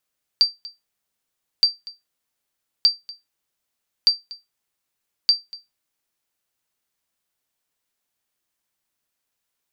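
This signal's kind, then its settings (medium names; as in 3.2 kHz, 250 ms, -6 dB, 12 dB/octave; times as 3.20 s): sonar ping 4.68 kHz, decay 0.19 s, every 1.22 s, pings 5, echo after 0.24 s, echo -21 dB -6.5 dBFS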